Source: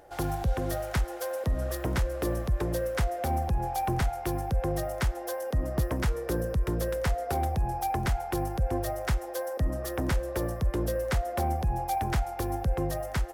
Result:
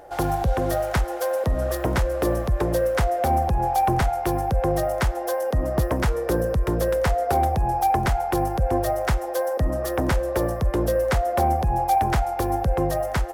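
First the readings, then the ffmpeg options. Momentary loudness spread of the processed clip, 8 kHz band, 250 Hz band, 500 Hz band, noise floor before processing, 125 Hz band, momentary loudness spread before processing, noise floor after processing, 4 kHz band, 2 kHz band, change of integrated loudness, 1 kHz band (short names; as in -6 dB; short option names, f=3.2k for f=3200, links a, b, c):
3 LU, +4.5 dB, +6.5 dB, +9.0 dB, -38 dBFS, +4.5 dB, 3 LU, -29 dBFS, +5.0 dB, +6.5 dB, +7.0 dB, +10.0 dB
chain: -af "equalizer=f=720:w=0.7:g=5.5,volume=4.5dB"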